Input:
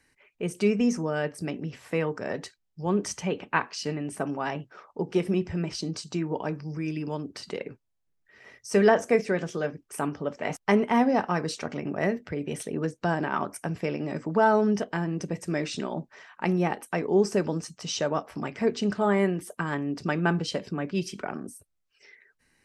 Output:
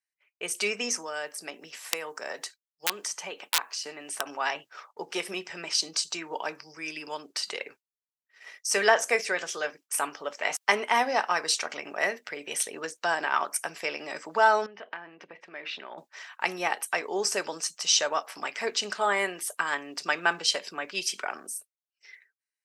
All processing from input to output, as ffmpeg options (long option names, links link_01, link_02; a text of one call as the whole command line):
ffmpeg -i in.wav -filter_complex "[0:a]asettb=1/sr,asplit=3[link_01][link_02][link_03];[link_01]atrim=end=0.954[link_04];[link_02]atrim=start=0.95:end=4.26,asetpts=PTS-STARTPTS,afade=type=in:duration=0.004:curve=qsin,afade=type=out:start_time=3.306:duration=0.004:curve=qsin,highshelf=frequency=6600:gain=7,acrossover=split=130|1500|6500[link_05][link_06][link_07][link_08];[link_05]acompressor=threshold=-55dB:ratio=3[link_09];[link_06]acompressor=threshold=-31dB:ratio=3[link_10];[link_07]acompressor=threshold=-50dB:ratio=3[link_11];[link_08]acompressor=threshold=-56dB:ratio=3[link_12];[link_09][link_10][link_11][link_12]amix=inputs=4:normalize=0,aeval=exprs='(mod(11.2*val(0)+1,2)-1)/11.2':channel_layout=same[link_13];[link_03]atrim=start=4.256[link_14];[link_04][link_13]acrossfade=duration=0.004:curve1=hsin:curve2=qsin[link_15];[link_15][link_14]acrossfade=duration=0.004:curve1=qsin:curve2=hsin,asettb=1/sr,asplit=3[link_16][link_17][link_18];[link_16]atrim=end=14.664[link_19];[link_17]atrim=start=14.66:end=15.98,asetpts=PTS-STARTPTS,afade=type=in:duration=0.004:curve=qsin,afade=type=out:start_time=1.316:duration=0.004:curve=qsin,lowpass=frequency=2900:width=0.5412,lowpass=frequency=2900:width=1.3066,acompressor=threshold=-33dB:ratio=8:attack=3.2:release=140:knee=1:detection=peak[link_20];[link_18]atrim=start=15.976[link_21];[link_19][link_20]acrossfade=duration=0.004:curve1=hsin:curve2=qsin[link_22];[link_22][link_21]acrossfade=duration=0.004:curve1=qsin:curve2=hsin,highpass=720,agate=range=-33dB:threshold=-49dB:ratio=3:detection=peak,highshelf=frequency=2300:gain=10,volume=2dB" out.wav